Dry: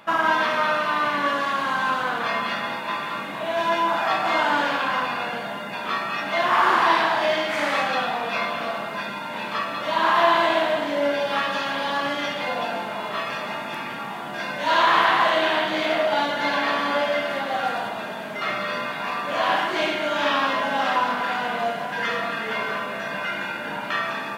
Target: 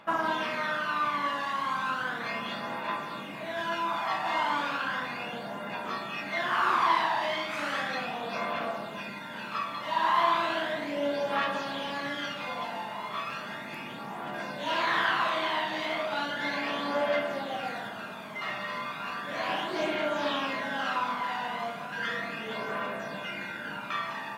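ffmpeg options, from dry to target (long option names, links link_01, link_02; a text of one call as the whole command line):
ffmpeg -i in.wav -af "aphaser=in_gain=1:out_gain=1:delay=1.1:decay=0.44:speed=0.35:type=triangular,volume=-8.5dB" out.wav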